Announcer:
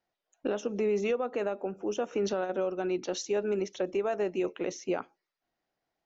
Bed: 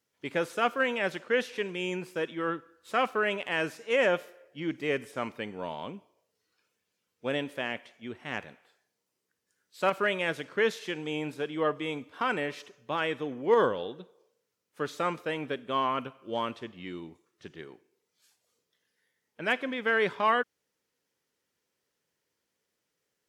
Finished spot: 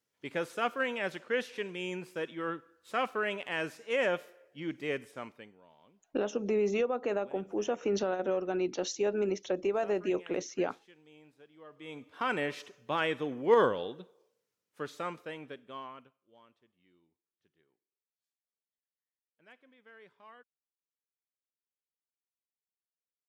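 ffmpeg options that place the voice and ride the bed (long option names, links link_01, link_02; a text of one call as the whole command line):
ffmpeg -i stem1.wav -i stem2.wav -filter_complex "[0:a]adelay=5700,volume=-0.5dB[link_01];[1:a]volume=19.5dB,afade=type=out:start_time=4.9:duration=0.71:silence=0.1,afade=type=in:start_time=11.7:duration=0.75:silence=0.0630957,afade=type=out:start_time=13.54:duration=2.66:silence=0.0354813[link_02];[link_01][link_02]amix=inputs=2:normalize=0" out.wav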